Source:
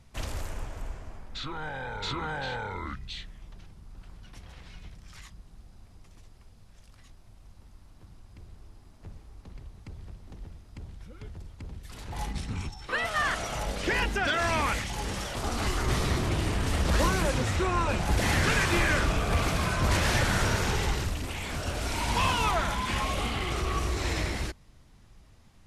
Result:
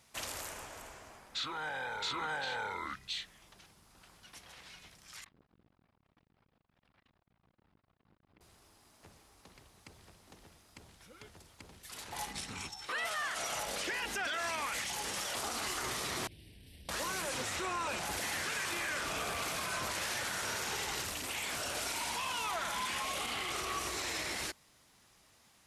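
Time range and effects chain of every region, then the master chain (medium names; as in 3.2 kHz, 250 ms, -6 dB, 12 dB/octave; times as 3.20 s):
5.24–8.41 s: distance through air 440 m + transformer saturation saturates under 220 Hz
16.27–16.89 s: amplifier tone stack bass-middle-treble 10-0-1 + static phaser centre 3 kHz, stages 4
whole clip: high-pass 700 Hz 6 dB/octave; treble shelf 6.7 kHz +8 dB; peak limiter -28 dBFS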